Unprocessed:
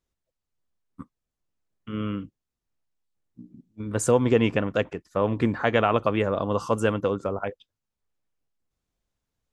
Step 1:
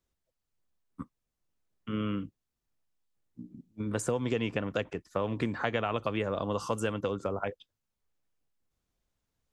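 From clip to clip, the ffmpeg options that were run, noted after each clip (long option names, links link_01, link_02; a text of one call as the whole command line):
ffmpeg -i in.wav -filter_complex "[0:a]acrossover=split=110|2500[link_01][link_02][link_03];[link_01]acompressor=threshold=-45dB:ratio=4[link_04];[link_02]acompressor=threshold=-29dB:ratio=4[link_05];[link_03]acompressor=threshold=-39dB:ratio=4[link_06];[link_04][link_05][link_06]amix=inputs=3:normalize=0" out.wav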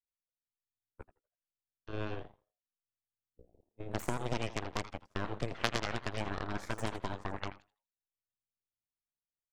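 ffmpeg -i in.wav -filter_complex "[0:a]asplit=5[link_01][link_02][link_03][link_04][link_05];[link_02]adelay=81,afreqshift=110,volume=-9dB[link_06];[link_03]adelay=162,afreqshift=220,volume=-17.9dB[link_07];[link_04]adelay=243,afreqshift=330,volume=-26.7dB[link_08];[link_05]adelay=324,afreqshift=440,volume=-35.6dB[link_09];[link_01][link_06][link_07][link_08][link_09]amix=inputs=5:normalize=0,aeval=exprs='0.237*(cos(1*acos(clip(val(0)/0.237,-1,1)))-cos(1*PI/2))+0.0841*(cos(3*acos(clip(val(0)/0.237,-1,1)))-cos(3*PI/2))+0.00168*(cos(5*acos(clip(val(0)/0.237,-1,1)))-cos(5*PI/2))+0.015*(cos(8*acos(clip(val(0)/0.237,-1,1)))-cos(8*PI/2))':channel_layout=same,volume=4dB" out.wav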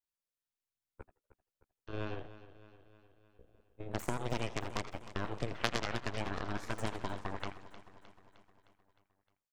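ffmpeg -i in.wav -af "aecho=1:1:308|616|924|1232|1540|1848:0.178|0.103|0.0598|0.0347|0.0201|0.0117,volume=-1dB" out.wav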